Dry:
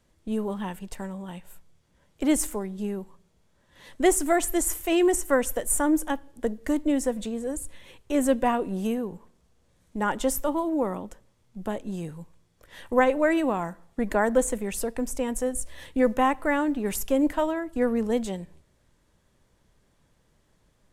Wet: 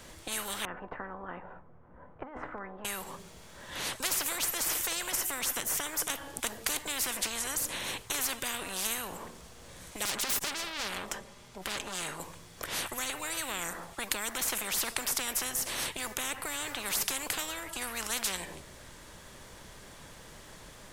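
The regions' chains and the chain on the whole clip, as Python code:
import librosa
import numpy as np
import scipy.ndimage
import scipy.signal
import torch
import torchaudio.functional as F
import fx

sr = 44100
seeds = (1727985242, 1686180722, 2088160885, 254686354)

y = fx.chain(x, sr, fx.lowpass(hz=1300.0, slope=24),
    fx.comb_fb(f0_hz=250.0, decay_s=0.18, harmonics='all', damping=0.0, mix_pct=60),
    fx.over_compress(threshold_db=-34.0, ratio=-0.5), at=(0.65, 2.85))
y = fx.chain(y, sr, fx.high_shelf(hz=9900.0, db=-8.0),
    fx.tube_stage(drive_db=36.0, bias=0.4),
    fx.comb(ms=5.0, depth=0.51), at=(10.05, 12.2))
y = fx.low_shelf(y, sr, hz=460.0, db=-9.5)
y = fx.rider(y, sr, range_db=4, speed_s=0.5)
y = fx.spectral_comp(y, sr, ratio=10.0)
y = y * 10.0 ** (-1.5 / 20.0)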